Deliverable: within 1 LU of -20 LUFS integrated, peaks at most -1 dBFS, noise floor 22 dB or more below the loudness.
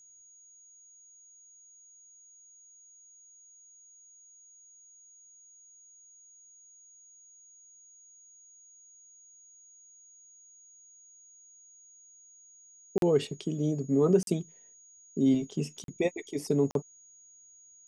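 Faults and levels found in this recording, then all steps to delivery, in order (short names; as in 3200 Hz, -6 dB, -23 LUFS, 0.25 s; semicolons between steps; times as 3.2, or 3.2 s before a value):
dropouts 4; longest dropout 42 ms; steady tone 6700 Hz; tone level -54 dBFS; loudness -29.0 LUFS; peak -13.5 dBFS; loudness target -20.0 LUFS
-> interpolate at 12.98/14.23/15.84/16.71, 42 ms; notch 6700 Hz, Q 30; gain +9 dB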